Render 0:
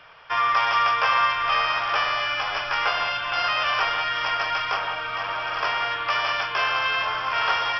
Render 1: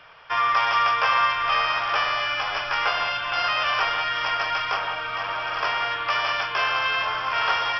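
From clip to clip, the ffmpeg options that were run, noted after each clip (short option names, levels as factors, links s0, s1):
-af anull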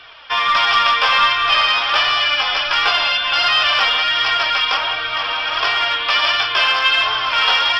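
-filter_complex "[0:a]flanger=delay=2.6:depth=1.4:regen=-20:speed=1.4:shape=sinusoidal,asplit=2[s0][s1];[s1]aeval=exprs='clip(val(0),-1,0.0562)':c=same,volume=0.422[s2];[s0][s2]amix=inputs=2:normalize=0,equalizer=f=3700:t=o:w=0.99:g=12.5,volume=1.68"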